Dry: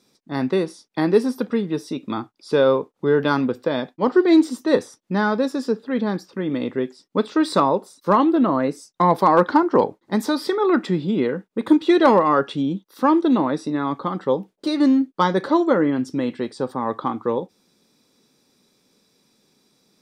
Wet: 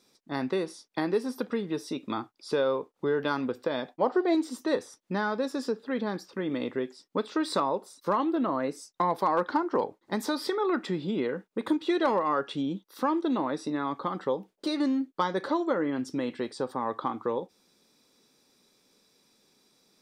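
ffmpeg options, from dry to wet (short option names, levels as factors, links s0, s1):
-filter_complex "[0:a]asettb=1/sr,asplit=3[s0][s1][s2];[s0]atrim=end=3.894[s3];[s1]atrim=start=3.89:end=4.35,asetpts=PTS-STARTPTS,afade=t=in:d=0.004:c=qsin,afade=t=out:st=0.456:d=0.004:c=qsin,equalizer=f=680:w=1.5:g=11[s4];[s2]atrim=start=4.346[s5];[s3][s4]acrossfade=d=0.004:c1=hsin:c2=qsin[s6];[s6][s5]acrossfade=d=0.004:c1=qsin:c2=hsin,equalizer=f=150:t=o:w=2.1:g=-6,acompressor=threshold=0.0501:ratio=2,volume=0.794"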